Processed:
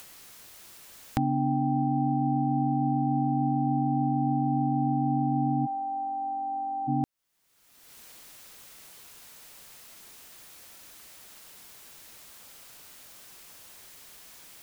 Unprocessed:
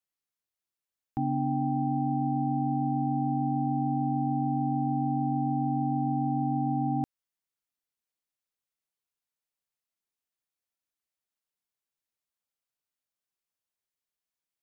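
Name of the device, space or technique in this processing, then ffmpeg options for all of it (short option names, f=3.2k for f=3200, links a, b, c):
upward and downward compression: -filter_complex "[0:a]acompressor=mode=upward:threshold=-33dB:ratio=2.5,acompressor=threshold=-34dB:ratio=3,asplit=3[a][b][c];[a]afade=t=out:st=5.65:d=0.02[d];[b]highpass=f=490:w=0.5412,highpass=f=490:w=1.3066,afade=t=in:st=5.65:d=0.02,afade=t=out:st=6.87:d=0.02[e];[c]afade=t=in:st=6.87:d=0.02[f];[d][e][f]amix=inputs=3:normalize=0,volume=9dB"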